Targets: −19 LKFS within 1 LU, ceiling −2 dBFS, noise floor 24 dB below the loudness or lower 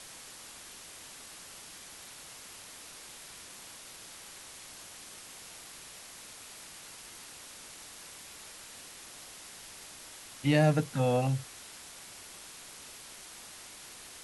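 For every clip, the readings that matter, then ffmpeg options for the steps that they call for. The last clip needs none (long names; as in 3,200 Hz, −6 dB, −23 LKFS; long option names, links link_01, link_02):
background noise floor −49 dBFS; target noise floor −62 dBFS; integrated loudness −38.0 LKFS; sample peak −13.5 dBFS; target loudness −19.0 LKFS
→ -af "afftdn=noise_reduction=13:noise_floor=-49"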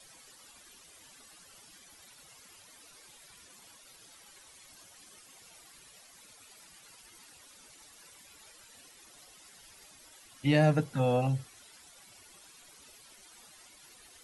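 background noise floor −57 dBFS; integrated loudness −28.5 LKFS; sample peak −13.5 dBFS; target loudness −19.0 LKFS
→ -af "volume=9.5dB"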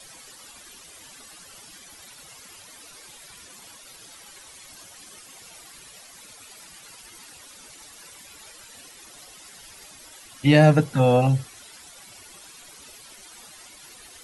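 integrated loudness −19.0 LKFS; sample peak −4.0 dBFS; background noise floor −47 dBFS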